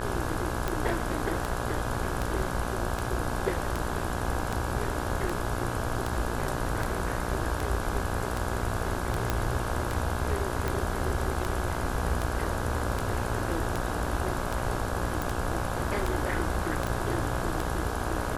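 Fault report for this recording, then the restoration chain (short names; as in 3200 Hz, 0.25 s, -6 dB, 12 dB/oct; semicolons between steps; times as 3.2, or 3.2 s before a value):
buzz 60 Hz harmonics 28 -34 dBFS
tick 78 rpm
9.3 pop -11 dBFS
15.22 pop
16.87 pop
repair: de-click; de-hum 60 Hz, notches 28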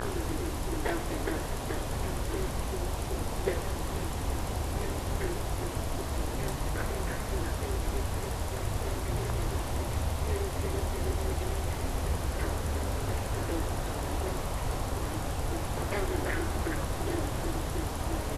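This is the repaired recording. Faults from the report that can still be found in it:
none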